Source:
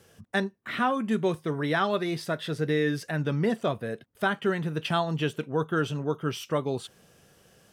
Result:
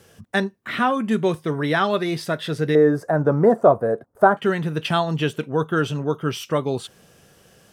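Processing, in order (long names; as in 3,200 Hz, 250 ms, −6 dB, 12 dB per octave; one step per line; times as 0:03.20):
0:02.75–0:04.37: drawn EQ curve 210 Hz 0 dB, 670 Hz +11 dB, 1,400 Hz +3 dB, 2,900 Hz −24 dB, 7,300 Hz −8 dB
level +5.5 dB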